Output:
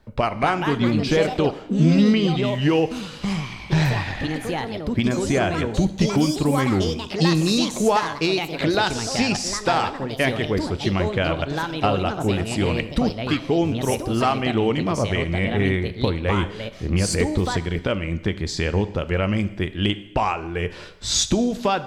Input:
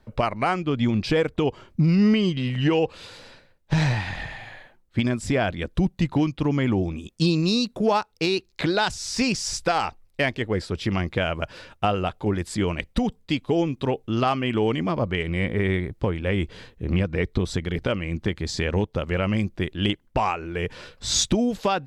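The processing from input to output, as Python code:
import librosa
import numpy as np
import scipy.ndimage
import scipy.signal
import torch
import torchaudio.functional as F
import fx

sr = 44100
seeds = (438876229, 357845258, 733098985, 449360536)

y = fx.echo_pitch(x, sr, ms=284, semitones=4, count=2, db_per_echo=-6.0)
y = fx.rev_double_slope(y, sr, seeds[0], early_s=0.89, late_s=2.3, knee_db=-24, drr_db=12.0)
y = F.gain(torch.from_numpy(y), 1.5).numpy()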